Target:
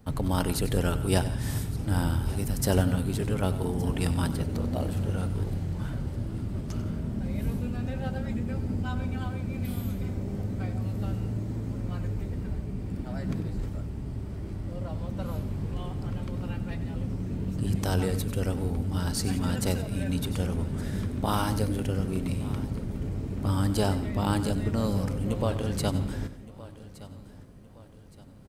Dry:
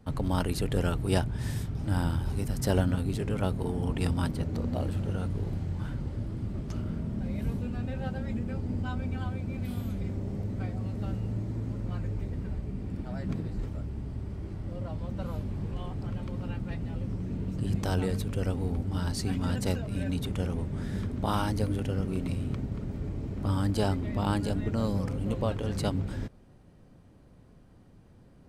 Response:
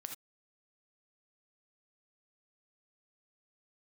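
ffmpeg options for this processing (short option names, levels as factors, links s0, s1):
-filter_complex "[0:a]highshelf=f=9000:g=10.5,aecho=1:1:1168|2336|3504:0.119|0.0464|0.0181,asplit=2[s0][s1];[1:a]atrim=start_sample=2205,adelay=95[s2];[s1][s2]afir=irnorm=-1:irlink=0,volume=0.355[s3];[s0][s3]amix=inputs=2:normalize=0,volume=1.19"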